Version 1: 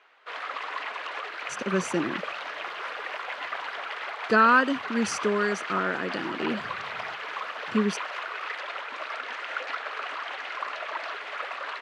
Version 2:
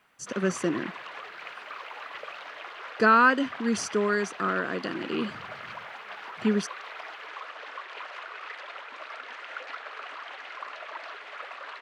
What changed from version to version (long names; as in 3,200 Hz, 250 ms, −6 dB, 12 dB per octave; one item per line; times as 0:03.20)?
speech: entry −1.30 s
background −6.0 dB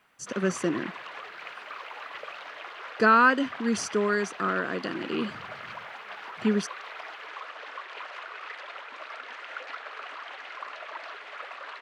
nothing changed